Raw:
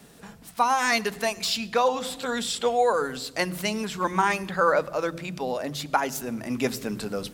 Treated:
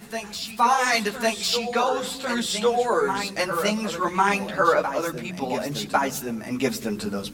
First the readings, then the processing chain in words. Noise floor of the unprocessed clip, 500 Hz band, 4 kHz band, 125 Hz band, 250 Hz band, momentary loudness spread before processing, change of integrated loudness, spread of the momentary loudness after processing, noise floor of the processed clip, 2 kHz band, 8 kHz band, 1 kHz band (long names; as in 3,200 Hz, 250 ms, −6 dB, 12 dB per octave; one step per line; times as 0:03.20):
−49 dBFS, +1.5 dB, +2.5 dB, +1.5 dB, +3.0 dB, 9 LU, +2.0 dB, 9 LU, −38 dBFS, +2.0 dB, +2.5 dB, +2.0 dB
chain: backwards echo 1,101 ms −7.5 dB
string-ensemble chorus
level +5 dB